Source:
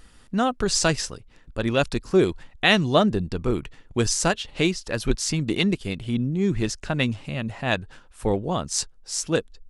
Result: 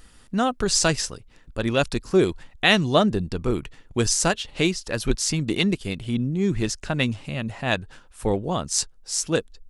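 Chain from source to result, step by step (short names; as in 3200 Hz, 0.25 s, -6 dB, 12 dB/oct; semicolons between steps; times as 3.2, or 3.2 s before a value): high shelf 6300 Hz +4.5 dB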